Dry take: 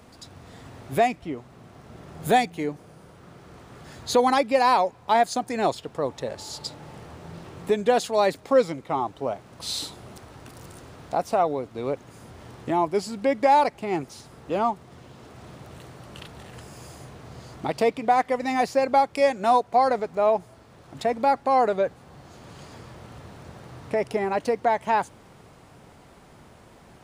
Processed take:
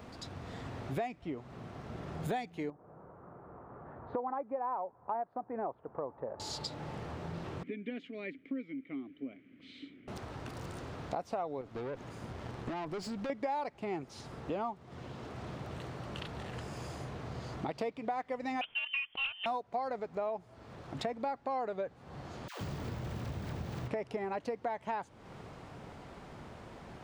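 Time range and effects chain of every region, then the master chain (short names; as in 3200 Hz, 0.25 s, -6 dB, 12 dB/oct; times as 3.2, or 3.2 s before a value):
2.7–6.4 LPF 1200 Hz 24 dB/oct + low shelf 400 Hz -10.5 dB
7.63–10.08 vowel filter i + resonant high shelf 3200 Hz -9 dB, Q 1.5
11.61–13.3 compressor 2:1, threshold -32 dBFS + transient shaper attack +10 dB, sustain +2 dB + tube stage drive 33 dB, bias 0.4
18.61–19.46 bell 1800 Hz -3.5 dB 1.8 oct + inverted band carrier 3300 Hz + Doppler distortion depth 0.38 ms
22.48–23.88 low shelf 340 Hz +10 dB + companded quantiser 4-bit + dispersion lows, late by 0.127 s, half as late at 630 Hz
whole clip: bell 12000 Hz -14.5 dB 1.2 oct; compressor 4:1, threshold -38 dBFS; gain +1.5 dB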